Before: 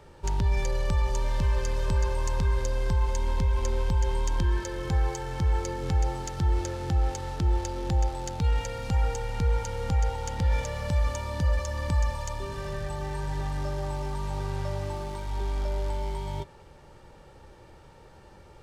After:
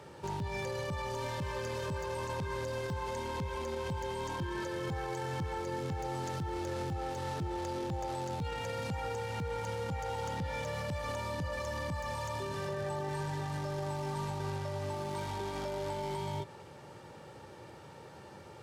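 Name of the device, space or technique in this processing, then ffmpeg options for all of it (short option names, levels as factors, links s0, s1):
podcast mastering chain: -filter_complex "[0:a]asettb=1/sr,asplit=3[s0][s1][s2];[s0]atrim=end=12.684[s3];[s1]atrim=start=12.68:end=13.09,asetpts=PTS-STARTPTS,afade=t=in:d=0.004:c=qsin,afade=t=out:st=0.406:d=0.004:c=qsin,equalizer=f=540:t=o:w=2.5:g=5.5[s4];[s2]atrim=start=13.086[s5];[s3][s4]acrossfade=d=0.004:c1=hsin:c2=qsin[s6];[s6][s5]acrossfade=d=0.004:c1=qsin:c2=hsin,highpass=f=99:w=0.5412,highpass=f=99:w=1.3066,deesser=1,acompressor=threshold=0.02:ratio=3,alimiter=level_in=2.37:limit=0.0631:level=0:latency=1:release=19,volume=0.422,volume=1.41" -ar 48000 -c:a libmp3lame -b:a 96k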